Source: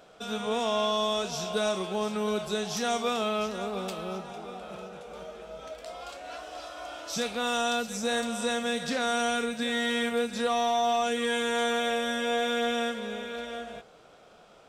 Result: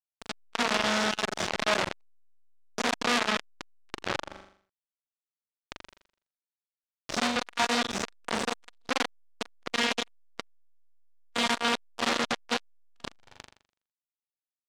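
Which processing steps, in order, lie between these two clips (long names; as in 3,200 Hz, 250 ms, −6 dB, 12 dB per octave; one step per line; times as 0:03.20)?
high-pass filter 130 Hz 12 dB per octave
parametric band 1,800 Hz −10 dB 2.8 octaves
comb filter 3.3 ms, depth 97%
in parallel at +3 dB: compressor whose output falls as the input rises −32 dBFS, ratio −1
on the sum: bit reduction 4 bits
high-frequency loss of the air 120 metres
flutter between parallel walls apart 7.1 metres, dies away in 0.51 s
saturating transformer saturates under 3,800 Hz
level +5 dB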